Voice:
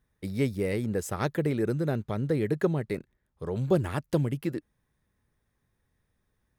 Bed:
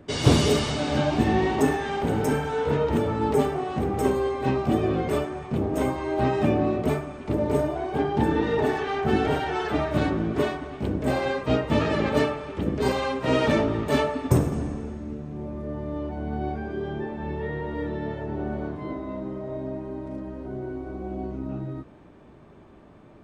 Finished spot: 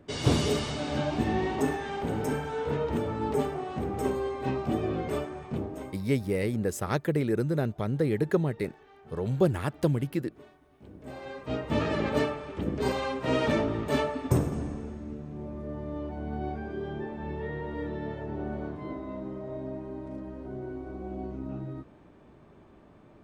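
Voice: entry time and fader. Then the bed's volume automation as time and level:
5.70 s, +0.5 dB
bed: 0:05.57 −6 dB
0:06.17 −28 dB
0:10.60 −28 dB
0:11.79 −4.5 dB

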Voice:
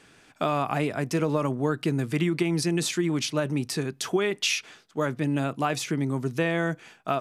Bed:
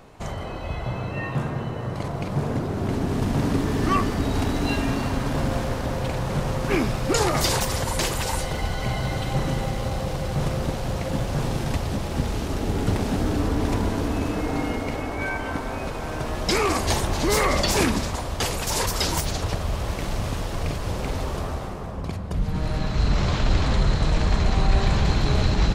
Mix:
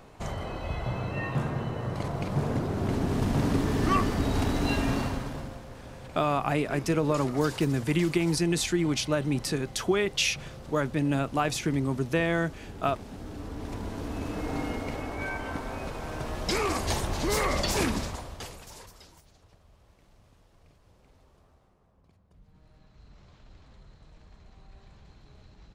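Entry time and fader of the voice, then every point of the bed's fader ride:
5.75 s, −0.5 dB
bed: 0:05.00 −3 dB
0:05.60 −18 dB
0:13.14 −18 dB
0:14.53 −6 dB
0:18.03 −6 dB
0:19.22 −33 dB

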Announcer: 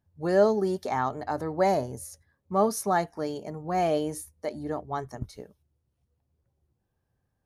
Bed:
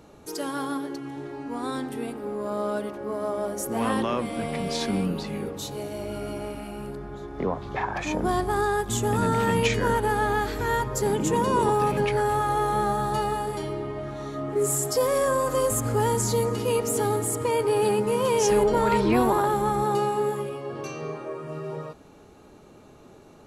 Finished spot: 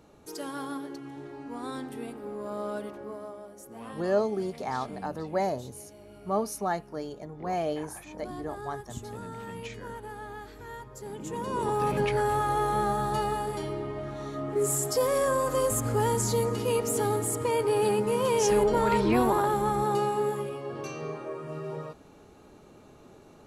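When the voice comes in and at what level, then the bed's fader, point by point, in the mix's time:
3.75 s, −4.5 dB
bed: 0:02.99 −6 dB
0:03.47 −17 dB
0:11.00 −17 dB
0:11.94 −2.5 dB

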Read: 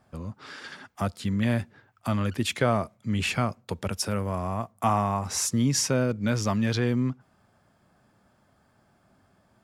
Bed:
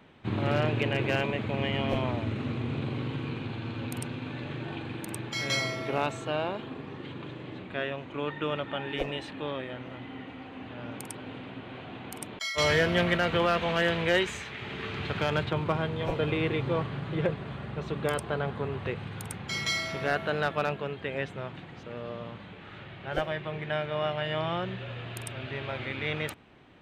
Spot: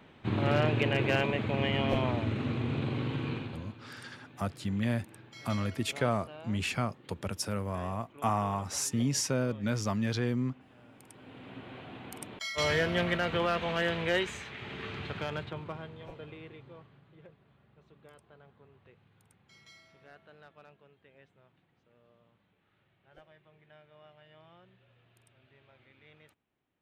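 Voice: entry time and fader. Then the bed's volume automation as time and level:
3.40 s, −5.5 dB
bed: 0:03.35 0 dB
0:03.82 −17 dB
0:10.97 −17 dB
0:11.56 −4 dB
0:14.90 −4 dB
0:17.17 −27 dB

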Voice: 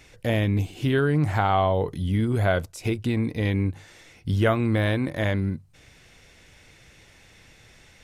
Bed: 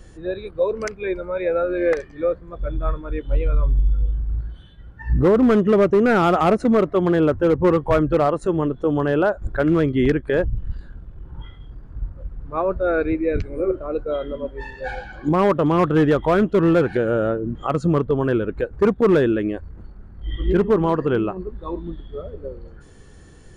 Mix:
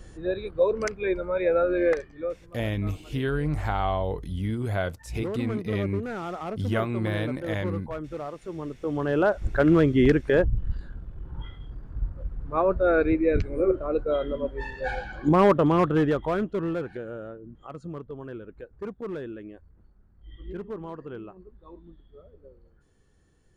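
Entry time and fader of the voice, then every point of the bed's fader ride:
2.30 s, −5.5 dB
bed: 0:01.77 −1.5 dB
0:02.72 −17 dB
0:08.41 −17 dB
0:09.38 −1 dB
0:15.50 −1 dB
0:17.31 −18.5 dB

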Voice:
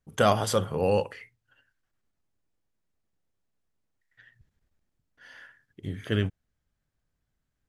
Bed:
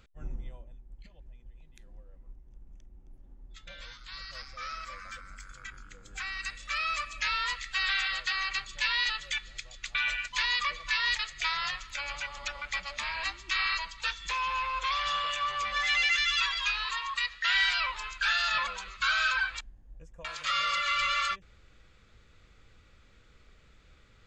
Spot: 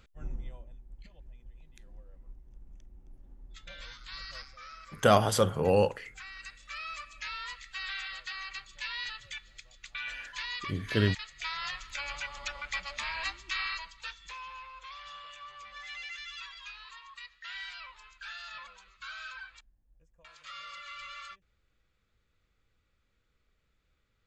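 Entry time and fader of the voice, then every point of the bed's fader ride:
4.85 s, 0.0 dB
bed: 0:04.35 0 dB
0:04.62 −9 dB
0:11.25 −9 dB
0:11.87 −1.5 dB
0:13.27 −1.5 dB
0:14.77 −16 dB

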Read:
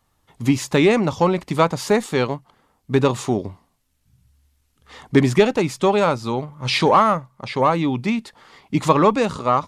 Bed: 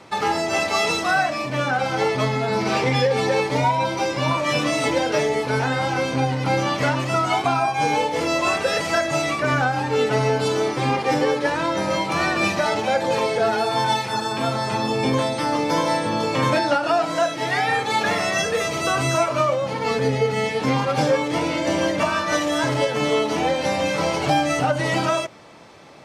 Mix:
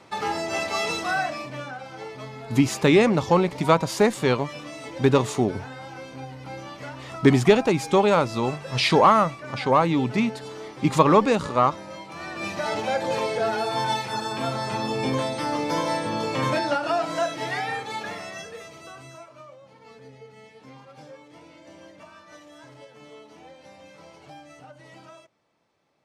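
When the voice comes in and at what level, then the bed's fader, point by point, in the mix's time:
2.10 s, −1.5 dB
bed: 0:01.30 −5.5 dB
0:01.83 −16.5 dB
0:12.15 −16.5 dB
0:12.75 −4.5 dB
0:17.37 −4.5 dB
0:19.34 −26 dB

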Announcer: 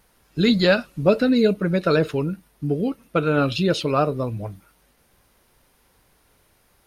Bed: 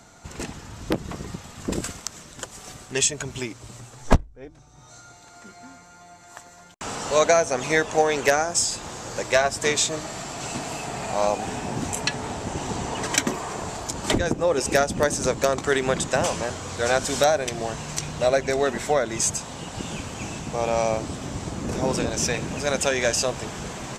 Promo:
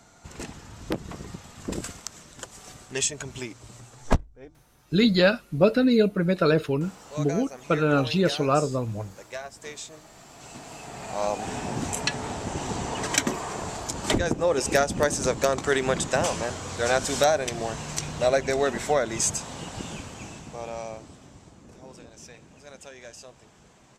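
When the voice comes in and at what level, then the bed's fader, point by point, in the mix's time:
4.55 s, −2.0 dB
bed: 0:04.44 −4.5 dB
0:04.93 −17 dB
0:10.07 −17 dB
0:11.57 −1.5 dB
0:19.63 −1.5 dB
0:21.80 −22 dB

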